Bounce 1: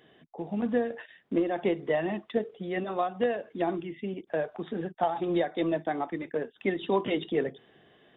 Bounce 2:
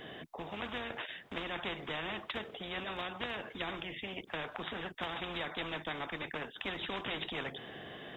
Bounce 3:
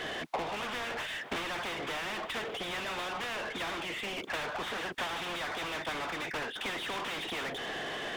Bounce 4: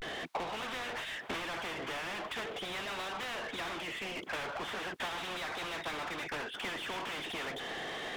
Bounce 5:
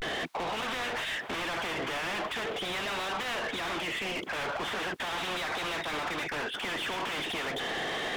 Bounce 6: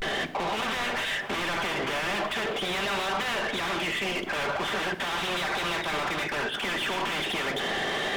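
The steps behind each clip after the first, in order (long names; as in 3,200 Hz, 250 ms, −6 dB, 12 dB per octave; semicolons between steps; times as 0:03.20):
every bin compressed towards the loudest bin 4 to 1; level −7 dB
mid-hump overdrive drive 36 dB, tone 3,000 Hz, clips at −21.5 dBFS; transient designer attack +9 dB, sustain −4 dB; level −7.5 dB
pitch vibrato 0.4 Hz 83 cents; level −2.5 dB
brickwall limiter −36 dBFS, peak gain reduction 7.5 dB; level +7 dB
rectangular room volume 3,200 cubic metres, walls furnished, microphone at 1.2 metres; level +3.5 dB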